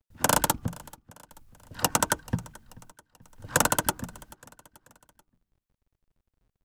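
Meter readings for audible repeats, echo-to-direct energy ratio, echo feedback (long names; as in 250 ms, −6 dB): 3, −21.5 dB, 49%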